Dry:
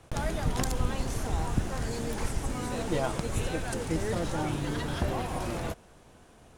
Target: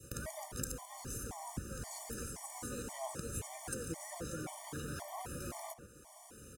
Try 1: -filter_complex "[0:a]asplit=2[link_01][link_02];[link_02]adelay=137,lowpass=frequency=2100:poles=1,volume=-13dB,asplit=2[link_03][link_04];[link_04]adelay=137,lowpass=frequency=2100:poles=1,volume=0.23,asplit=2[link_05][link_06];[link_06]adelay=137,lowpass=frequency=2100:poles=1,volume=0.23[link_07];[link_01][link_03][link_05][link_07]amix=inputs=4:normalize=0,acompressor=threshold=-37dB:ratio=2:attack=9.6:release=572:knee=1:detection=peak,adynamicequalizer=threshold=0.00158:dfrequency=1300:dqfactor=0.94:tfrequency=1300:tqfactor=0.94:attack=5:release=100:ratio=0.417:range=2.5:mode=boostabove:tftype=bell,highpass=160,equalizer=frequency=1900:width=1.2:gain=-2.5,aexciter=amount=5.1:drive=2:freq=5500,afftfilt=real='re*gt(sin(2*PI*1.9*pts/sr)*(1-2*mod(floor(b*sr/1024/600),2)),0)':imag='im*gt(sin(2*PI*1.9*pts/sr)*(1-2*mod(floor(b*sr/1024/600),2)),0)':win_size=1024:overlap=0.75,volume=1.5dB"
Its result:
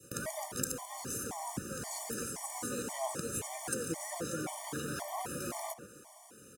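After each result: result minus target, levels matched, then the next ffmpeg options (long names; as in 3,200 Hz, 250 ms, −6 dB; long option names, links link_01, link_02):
downward compressor: peak gain reduction −5.5 dB; 125 Hz band −5.0 dB
-filter_complex "[0:a]asplit=2[link_01][link_02];[link_02]adelay=137,lowpass=frequency=2100:poles=1,volume=-13dB,asplit=2[link_03][link_04];[link_04]adelay=137,lowpass=frequency=2100:poles=1,volume=0.23,asplit=2[link_05][link_06];[link_06]adelay=137,lowpass=frequency=2100:poles=1,volume=0.23[link_07];[link_01][link_03][link_05][link_07]amix=inputs=4:normalize=0,acompressor=threshold=-48.5dB:ratio=2:attack=9.6:release=572:knee=1:detection=peak,adynamicequalizer=threshold=0.00158:dfrequency=1300:dqfactor=0.94:tfrequency=1300:tqfactor=0.94:attack=5:release=100:ratio=0.417:range=2.5:mode=boostabove:tftype=bell,highpass=160,equalizer=frequency=1900:width=1.2:gain=-2.5,aexciter=amount=5.1:drive=2:freq=5500,afftfilt=real='re*gt(sin(2*PI*1.9*pts/sr)*(1-2*mod(floor(b*sr/1024/600),2)),0)':imag='im*gt(sin(2*PI*1.9*pts/sr)*(1-2*mod(floor(b*sr/1024/600),2)),0)':win_size=1024:overlap=0.75,volume=1.5dB"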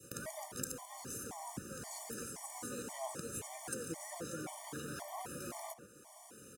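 125 Hz band −5.0 dB
-filter_complex "[0:a]asplit=2[link_01][link_02];[link_02]adelay=137,lowpass=frequency=2100:poles=1,volume=-13dB,asplit=2[link_03][link_04];[link_04]adelay=137,lowpass=frequency=2100:poles=1,volume=0.23,asplit=2[link_05][link_06];[link_06]adelay=137,lowpass=frequency=2100:poles=1,volume=0.23[link_07];[link_01][link_03][link_05][link_07]amix=inputs=4:normalize=0,acompressor=threshold=-48.5dB:ratio=2:attack=9.6:release=572:knee=1:detection=peak,adynamicequalizer=threshold=0.00158:dfrequency=1300:dqfactor=0.94:tfrequency=1300:tqfactor=0.94:attack=5:release=100:ratio=0.417:range=2.5:mode=boostabove:tftype=bell,highpass=47,equalizer=frequency=1900:width=1.2:gain=-2.5,aexciter=amount=5.1:drive=2:freq=5500,afftfilt=real='re*gt(sin(2*PI*1.9*pts/sr)*(1-2*mod(floor(b*sr/1024/600),2)),0)':imag='im*gt(sin(2*PI*1.9*pts/sr)*(1-2*mod(floor(b*sr/1024/600),2)),0)':win_size=1024:overlap=0.75,volume=1.5dB"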